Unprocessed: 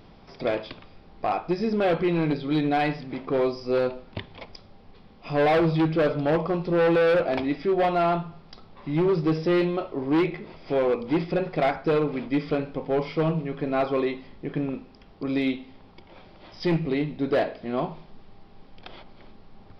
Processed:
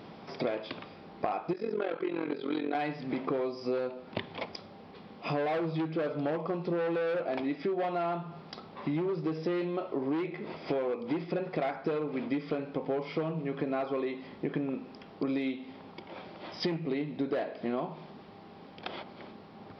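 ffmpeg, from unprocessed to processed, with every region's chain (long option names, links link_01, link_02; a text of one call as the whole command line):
ffmpeg -i in.wav -filter_complex "[0:a]asettb=1/sr,asplit=3[link_01][link_02][link_03];[link_01]atrim=end=1.534[link_04];[link_02]atrim=start=1.53:end=2.75,asetpts=PTS-STARTPTS,afade=type=in:duration=0.004:curve=qsin,afade=type=out:start_time=1.216:duration=0.004:curve=qsin,highpass=310,equalizer=frequency=400:width_type=q:width=4:gain=5,equalizer=frequency=660:width_type=q:width=4:gain=-4,equalizer=frequency=1400:width_type=q:width=4:gain=4,lowpass=frequency=4700:width=0.5412,lowpass=frequency=4700:width=1.3066,tremolo=f=44:d=0.857[link_05];[link_03]atrim=start=2.746[link_06];[link_04][link_05]acrossfade=duration=0.004:curve1=hsin:curve2=qsin[link_07];[link_07][link_06]acrossfade=duration=0.004:curve1=qsin:curve2=hsin,highpass=170,highshelf=frequency=4000:gain=-6,acompressor=threshold=-34dB:ratio=12,volume=5.5dB" out.wav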